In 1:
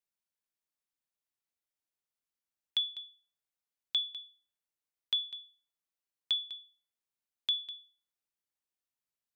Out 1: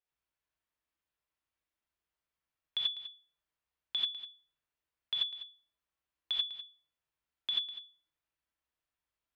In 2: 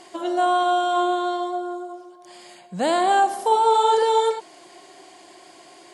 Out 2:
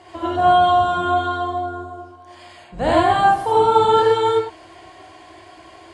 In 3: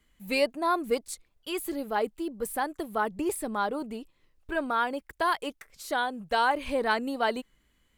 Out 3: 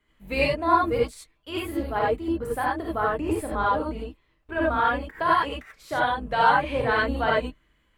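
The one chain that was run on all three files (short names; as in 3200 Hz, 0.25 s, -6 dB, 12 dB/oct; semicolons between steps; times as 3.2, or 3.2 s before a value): octaver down 2 oct, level 0 dB; tone controls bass -7 dB, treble -13 dB; non-linear reverb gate 0.11 s rising, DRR -4.5 dB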